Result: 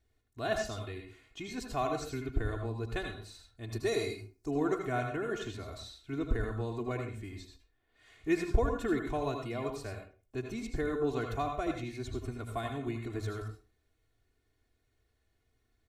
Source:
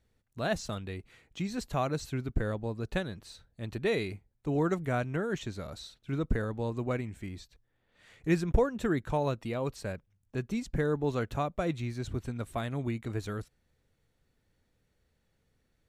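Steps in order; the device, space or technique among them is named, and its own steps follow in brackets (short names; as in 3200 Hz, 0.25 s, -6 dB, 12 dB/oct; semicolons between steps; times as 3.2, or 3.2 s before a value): 3.72–4.51 resonant high shelf 4100 Hz +7.5 dB, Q 3; microphone above a desk (comb 2.8 ms, depth 77%; reverb RT60 0.35 s, pre-delay 74 ms, DRR 3.5 dB); gain -5 dB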